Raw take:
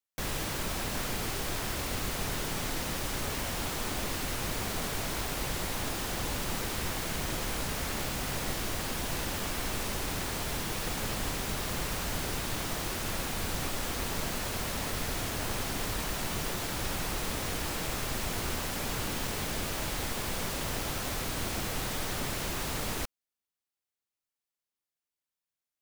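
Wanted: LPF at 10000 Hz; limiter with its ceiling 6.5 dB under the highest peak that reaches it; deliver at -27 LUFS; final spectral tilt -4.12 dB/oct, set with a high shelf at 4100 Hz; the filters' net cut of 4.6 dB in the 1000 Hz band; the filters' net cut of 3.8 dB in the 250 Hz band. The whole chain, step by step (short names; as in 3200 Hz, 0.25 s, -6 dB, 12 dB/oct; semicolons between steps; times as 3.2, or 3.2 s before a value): LPF 10000 Hz; bell 250 Hz -5 dB; bell 1000 Hz -5.5 dB; high shelf 4100 Hz -4 dB; gain +10.5 dB; limiter -16.5 dBFS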